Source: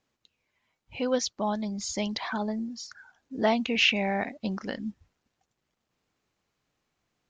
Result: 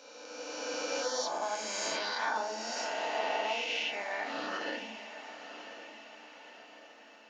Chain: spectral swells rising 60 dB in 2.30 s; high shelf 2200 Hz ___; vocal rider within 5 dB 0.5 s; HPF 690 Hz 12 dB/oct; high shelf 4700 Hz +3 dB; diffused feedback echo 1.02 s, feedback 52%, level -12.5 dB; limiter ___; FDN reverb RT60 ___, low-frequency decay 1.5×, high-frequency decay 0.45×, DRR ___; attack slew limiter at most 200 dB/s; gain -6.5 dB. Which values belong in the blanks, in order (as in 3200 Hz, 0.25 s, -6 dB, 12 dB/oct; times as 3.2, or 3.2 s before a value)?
-7 dB, -20 dBFS, 0.54 s, -0.5 dB